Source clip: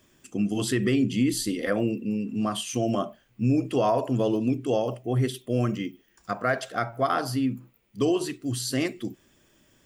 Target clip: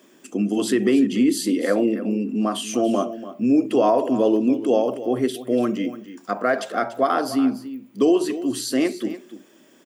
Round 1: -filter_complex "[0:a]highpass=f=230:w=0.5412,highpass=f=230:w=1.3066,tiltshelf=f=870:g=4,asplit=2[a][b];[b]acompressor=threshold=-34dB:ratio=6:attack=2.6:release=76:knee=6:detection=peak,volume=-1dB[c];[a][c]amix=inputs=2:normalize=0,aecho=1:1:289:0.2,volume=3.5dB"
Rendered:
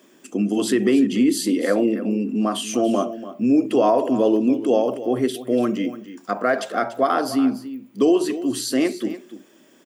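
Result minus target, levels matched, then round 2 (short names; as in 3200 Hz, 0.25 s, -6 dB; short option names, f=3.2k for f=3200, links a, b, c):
compressor: peak gain reduction -5 dB
-filter_complex "[0:a]highpass=f=230:w=0.5412,highpass=f=230:w=1.3066,tiltshelf=f=870:g=4,asplit=2[a][b];[b]acompressor=threshold=-40dB:ratio=6:attack=2.6:release=76:knee=6:detection=peak,volume=-1dB[c];[a][c]amix=inputs=2:normalize=0,aecho=1:1:289:0.2,volume=3.5dB"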